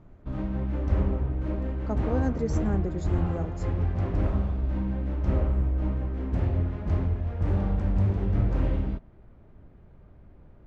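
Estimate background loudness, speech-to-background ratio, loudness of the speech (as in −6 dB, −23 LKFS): −28.5 LKFS, −4.5 dB, −33.0 LKFS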